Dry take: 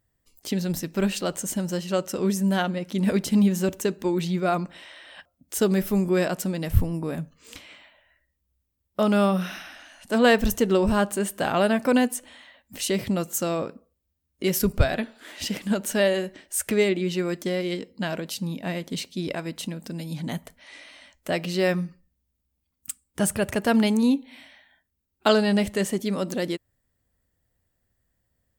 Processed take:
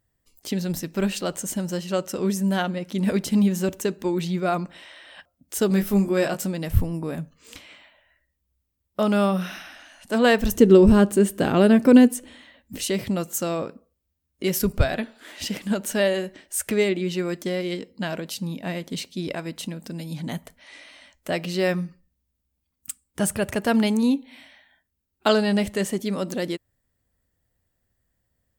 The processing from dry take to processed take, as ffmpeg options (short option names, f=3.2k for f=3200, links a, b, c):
-filter_complex "[0:a]asettb=1/sr,asplit=3[a][b][c];[a]atrim=end=5.684[d];[b]atrim=start=5.68:end=6.47,asetpts=PTS-STARTPTS,afade=t=in:d=0.004:c=qsin,afade=t=out:st=0.786:d=0.004:c=qsin,asplit=2[e][f];[f]adelay=20,volume=-5dB[g];[e][g]amix=inputs=2:normalize=0,atrim=end_sample=34839[h];[c]atrim=start=6.466[i];[d][h]acrossfade=d=0.004:c1=hsin:c2=qsin[j];[j][i]acrossfade=d=0.004:c1=qsin:c2=hsin,asettb=1/sr,asplit=3[k][l][m];[k]atrim=end=10.554[n];[l]atrim=start=10.55:end=12.85,asetpts=PTS-STARTPTS,afade=t=in:d=0.004:c=qsin,afade=t=out:st=2.296:d=0.004:c=qsin,lowshelf=f=520:t=q:w=1.5:g=7.5[o];[m]atrim=start=12.846[p];[n][o]acrossfade=d=0.004:c1=hsin:c2=qsin[q];[q][p]acrossfade=d=0.004:c1=qsin:c2=hsin"